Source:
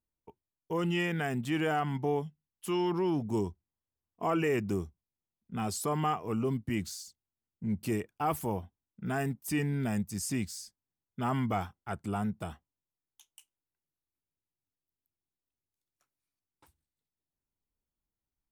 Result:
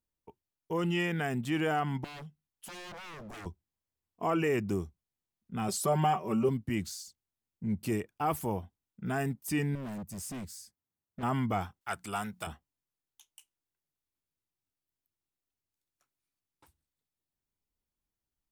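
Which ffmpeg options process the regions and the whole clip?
-filter_complex "[0:a]asettb=1/sr,asplit=3[a][b][c];[a]atrim=end=2.044[d];[b]atrim=start=2.04:end=3.46,asetpts=PTS-STARTPTS,afade=t=in:d=0.004:c=qsin,afade=t=out:st=1.416:d=0.004:c=qsin,aeval=exprs='0.015*(abs(mod(val(0)/0.015+3,4)-2)-1)':c=same,acompressor=threshold=-43dB:ratio=4:attack=3.2:release=140:knee=1:detection=peak[e];[c]atrim=start=3.456[f];[d][e]acrossfade=d=0.004:c1=hsin:c2=qsin[g];[g][f]acrossfade=d=0.004:c1=qsin:c2=hsin,asettb=1/sr,asplit=3[h][i][j];[h]atrim=end=5.684[k];[i]atrim=start=5.68:end=6.49,asetpts=PTS-STARTPTS,afade=t=in:d=0.004:c=qsin,afade=t=out:st=0.806:d=0.004:c=qsin,equalizer=f=580:w=5.4:g=5,aecho=1:1:5.3:0.85,atrim=end_sample=35721[l];[j]atrim=start=6.486[m];[k][l]acrossfade=d=0.004:c1=hsin:c2=qsin[n];[n][m]acrossfade=d=0.004:c1=qsin:c2=hsin,asettb=1/sr,asplit=3[o][p][q];[o]atrim=end=9.754[r];[p]atrim=start=9.75:end=11.23,asetpts=PTS-STARTPTS,afade=t=in:d=0.004:c=qsin,afade=t=out:st=1.476:d=0.004:c=qsin,highpass=45,equalizer=f=4.6k:w=0.65:g=-6.5,asoftclip=type=hard:threshold=-37.5dB[s];[q]atrim=start=11.226[t];[r][s]acrossfade=d=0.004:c1=hsin:c2=qsin[u];[u][t]acrossfade=d=0.004:c1=qsin:c2=hsin,asettb=1/sr,asplit=3[v][w][x];[v]atrim=end=11.814[y];[w]atrim=start=11.81:end=12.47,asetpts=PTS-STARTPTS,afade=t=in:d=0.004:c=qsin,afade=t=out:st=0.656:d=0.004:c=qsin,tiltshelf=f=720:g=-9.5,bandreject=f=60:t=h:w=6,bandreject=f=120:t=h:w=6,bandreject=f=180:t=h:w=6,bandreject=f=240:t=h:w=6,bandreject=f=300:t=h:w=6,asoftclip=type=hard:threshold=-23.5dB[z];[x]atrim=start=12.466[aa];[y][z]acrossfade=d=0.004:c1=hsin:c2=qsin[ab];[ab][aa]acrossfade=d=0.004:c1=qsin:c2=hsin"

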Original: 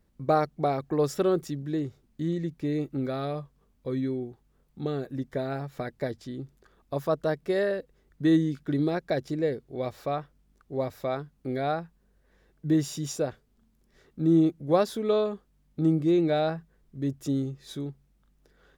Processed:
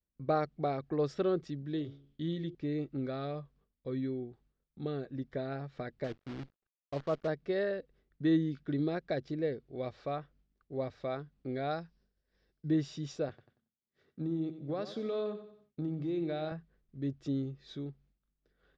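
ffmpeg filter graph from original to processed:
-filter_complex "[0:a]asettb=1/sr,asplit=3[a][b][c];[a]atrim=end=1.734[d];[b]atrim=start=1.73:end=2.55,asetpts=PTS-STARTPTS,afade=t=in:d=0.004:c=qsin,afade=t=out:st=0.816:d=0.004:c=qsin,equalizer=f=3.3k:w=4.5:g=15,bandreject=f=69.96:t=h:w=4,bandreject=f=139.92:t=h:w=4,bandreject=f=209.88:t=h:w=4,bandreject=f=279.84:t=h:w=4,bandreject=f=349.8:t=h:w=4,bandreject=f=419.76:t=h:w=4,bandreject=f=489.72:t=h:w=4,bandreject=f=559.68:t=h:w=4,bandreject=f=629.64:t=h:w=4,bandreject=f=699.6:t=h:w=4,bandreject=f=769.56:t=h:w=4,bandreject=f=839.52:t=h:w=4,bandreject=f=909.48:t=h:w=4,bandreject=f=979.44:t=h:w=4,bandreject=f=1.0494k:t=h:w=4,bandreject=f=1.11936k:t=h:w=4,bandreject=f=1.18932k:t=h:w=4,bandreject=f=1.25928k:t=h:w=4,bandreject=f=1.32924k:t=h:w=4[e];[c]atrim=start=2.546[f];[d][e]acrossfade=d=0.004:c1=hsin:c2=qsin[g];[g][f]acrossfade=d=0.004:c1=qsin:c2=hsin,asettb=1/sr,asplit=3[h][i][j];[h]atrim=end=6.044[k];[i]atrim=start=6.04:end=7.28,asetpts=PTS-STARTPTS,afade=t=in:d=0.004:c=qsin,afade=t=out:st=1.236:d=0.004:c=qsin,lowpass=f=1.7k:w=0.5412,lowpass=f=1.7k:w=1.3066,acrusher=bits=7:dc=4:mix=0:aa=0.000001,agate=range=-33dB:threshold=-53dB:ratio=3:release=100:detection=peak[l];[j]atrim=start=7.276[m];[k][l]acrossfade=d=0.004:c1=hsin:c2=qsin[n];[n][m]acrossfade=d=0.004:c1=qsin:c2=hsin,asettb=1/sr,asplit=3[o][p][q];[o]atrim=end=11.714[r];[p]atrim=start=11.71:end=12.69,asetpts=PTS-STARTPTS,afade=t=in:d=0.004:c=qsin,afade=t=out:st=0.976:d=0.004:c=qsin,lowpass=f=5.3k:t=q:w=5.7,bandreject=f=1.2k:w=24[s];[q]atrim=start=12.686[t];[r][s]acrossfade=d=0.004:c1=hsin:c2=qsin[u];[u][t]acrossfade=d=0.004:c1=qsin:c2=hsin,asettb=1/sr,asplit=3[v][w][x];[v]atrim=end=13.294[y];[w]atrim=start=13.29:end=16.52,asetpts=PTS-STARTPTS,afade=t=in:d=0.004:c=qsin,afade=t=out:st=3.226:d=0.004:c=qsin,highpass=f=83:w=0.5412,highpass=f=83:w=1.3066,acompressor=threshold=-25dB:ratio=6:attack=3.2:release=140:knee=1:detection=peak,aecho=1:1:92|184|276|368:0.266|0.114|0.0492|0.0212,atrim=end_sample=142443[z];[x]atrim=start=16.516[aa];[y][z]acrossfade=d=0.004:c1=hsin:c2=qsin[ab];[ab][aa]acrossfade=d=0.004:c1=qsin:c2=hsin,agate=range=-33dB:threshold=-56dB:ratio=3:detection=peak,lowpass=f=4.9k:w=0.5412,lowpass=f=4.9k:w=1.3066,equalizer=f=920:t=o:w=0.4:g=-5,volume=-6dB"

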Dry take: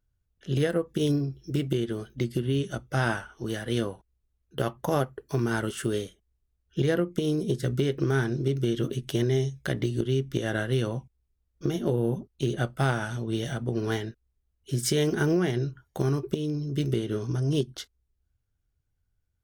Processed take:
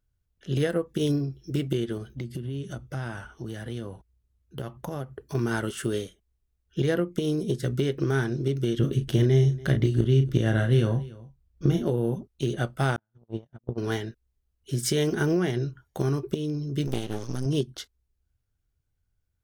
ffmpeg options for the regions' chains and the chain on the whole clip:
-filter_complex "[0:a]asettb=1/sr,asplit=3[a][b][c];[a]atrim=end=1.974[d];[b]atrim=start=1.97:end=5.35,asetpts=PTS-STARTPTS,afade=t=in:d=0.004:c=qsin,afade=t=out:st=3.376:d=0.004:c=qsin,highpass=51,lowshelf=f=200:g=9.5,acompressor=threshold=-33dB:ratio=3:attack=3.2:release=140:knee=1:detection=peak[e];[c]atrim=start=5.346[f];[d][e]acrossfade=d=0.004:c1=hsin:c2=qsin[g];[g][f]acrossfade=d=0.004:c1=qsin:c2=hsin,asettb=1/sr,asplit=3[h][i][j];[h]atrim=end=8.794[k];[i]atrim=start=8.79:end=11.83,asetpts=PTS-STARTPTS,afade=t=in:d=0.004:c=qsin,afade=t=out:st=3.036:d=0.004:c=qsin,bass=f=250:g=8,treble=f=4k:g=-3,asplit=2[l][m];[m]adelay=36,volume=-8dB[n];[l][n]amix=inputs=2:normalize=0,atrim=end_sample=134064,aecho=1:1:287:0.0944,atrim=end_sample=134064[o];[j]atrim=start=11.826[p];[k][o]acrossfade=d=0.004:c1=hsin:c2=qsin[q];[q][p]acrossfade=d=0.004:c1=qsin:c2=hsin,asettb=1/sr,asplit=3[r][s][t];[r]atrim=end=12.964[u];[s]atrim=start=12.96:end=13.78,asetpts=PTS-STARTPTS,afade=t=in:d=0.004:c=qsin,afade=t=out:st=0.816:d=0.004:c=qsin,lowpass=f=1.1k:p=1,equalizer=f=62:w=0.31:g=4.5,agate=range=-50dB:threshold=-25dB:ratio=16:release=100:detection=peak[v];[t]atrim=start=13.776[w];[u][v]acrossfade=d=0.004:c1=hsin:c2=qsin[x];[x][w]acrossfade=d=0.004:c1=qsin:c2=hsin,asettb=1/sr,asplit=3[y][z][aa];[y]atrim=end=16.874[ab];[z]atrim=start=16.87:end=17.46,asetpts=PTS-STARTPTS,afade=t=in:d=0.004:c=qsin,afade=t=out:st=0.586:d=0.004:c=qsin,highshelf=f=3.1k:g=9.5,aeval=exprs='max(val(0),0)':c=same[ac];[aa]atrim=start=17.456[ad];[ab][ac]acrossfade=d=0.004:c1=hsin:c2=qsin[ae];[ae][ad]acrossfade=d=0.004:c1=qsin:c2=hsin"

